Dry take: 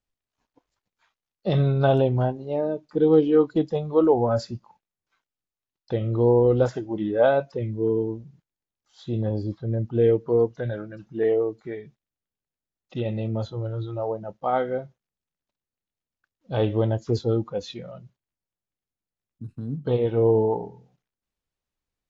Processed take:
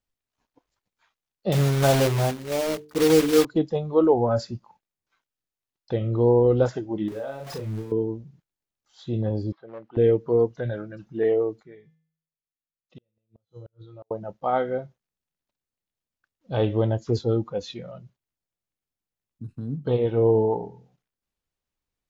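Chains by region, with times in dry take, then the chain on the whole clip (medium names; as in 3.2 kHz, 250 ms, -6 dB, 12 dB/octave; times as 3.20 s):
1.52–3.45 s: block-companded coder 3-bit + hum notches 50/100/150/200/250/300/350/400/450 Hz
7.08–7.92 s: jump at every zero crossing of -33.5 dBFS + compression 20:1, threshold -30 dBFS + doubling 37 ms -4 dB
9.52–9.97 s: hard clipper -21 dBFS + band-pass 630–2500 Hz
11.63–14.11 s: peaking EQ 790 Hz -8 dB 0.28 oct + feedback comb 160 Hz, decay 0.58 s, harmonics odd, mix 80% + inverted gate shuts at -34 dBFS, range -40 dB
whole clip: none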